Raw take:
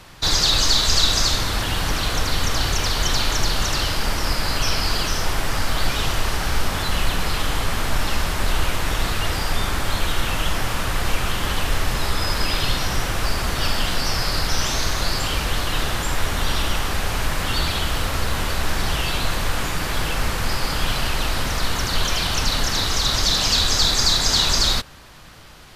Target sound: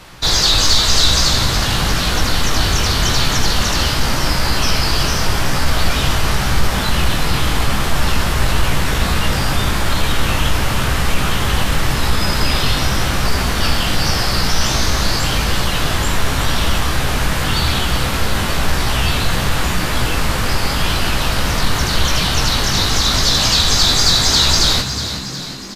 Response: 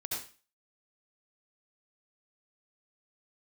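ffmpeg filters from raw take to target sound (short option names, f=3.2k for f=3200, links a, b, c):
-filter_complex "[0:a]flanger=delay=16:depth=4.3:speed=0.9,asoftclip=type=tanh:threshold=-9.5dB,asplit=2[a][b];[b]asplit=7[c][d][e][f][g][h][i];[c]adelay=364,afreqshift=63,volume=-10dB[j];[d]adelay=728,afreqshift=126,volume=-14.9dB[k];[e]adelay=1092,afreqshift=189,volume=-19.8dB[l];[f]adelay=1456,afreqshift=252,volume=-24.6dB[m];[g]adelay=1820,afreqshift=315,volume=-29.5dB[n];[h]adelay=2184,afreqshift=378,volume=-34.4dB[o];[i]adelay=2548,afreqshift=441,volume=-39.3dB[p];[j][k][l][m][n][o][p]amix=inputs=7:normalize=0[q];[a][q]amix=inputs=2:normalize=0,volume=8dB"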